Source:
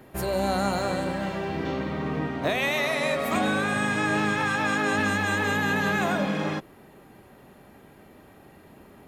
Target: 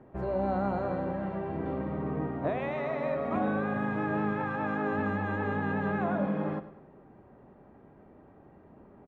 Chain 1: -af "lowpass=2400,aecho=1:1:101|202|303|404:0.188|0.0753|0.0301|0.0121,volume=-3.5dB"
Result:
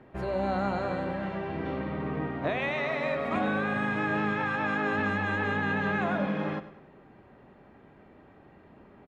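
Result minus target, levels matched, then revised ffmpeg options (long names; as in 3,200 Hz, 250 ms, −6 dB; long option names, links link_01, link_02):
2,000 Hz band +5.5 dB
-af "lowpass=1100,aecho=1:1:101|202|303|404:0.188|0.0753|0.0301|0.0121,volume=-3.5dB"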